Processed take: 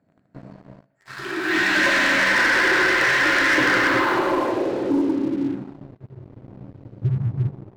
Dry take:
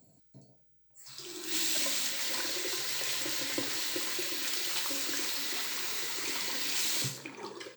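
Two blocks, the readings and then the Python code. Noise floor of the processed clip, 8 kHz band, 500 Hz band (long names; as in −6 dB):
−63 dBFS, −4.0 dB, +19.0 dB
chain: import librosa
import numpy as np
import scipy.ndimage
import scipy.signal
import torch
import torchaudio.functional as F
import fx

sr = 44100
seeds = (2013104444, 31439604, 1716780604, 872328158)

y = fx.filter_sweep_lowpass(x, sr, from_hz=1700.0, to_hz=110.0, start_s=3.6, end_s=5.8, q=3.6)
y = fx.rev_gated(y, sr, seeds[0], gate_ms=450, shape='flat', drr_db=-3.5)
y = fx.leveller(y, sr, passes=3)
y = F.gain(torch.from_numpy(y), 4.0).numpy()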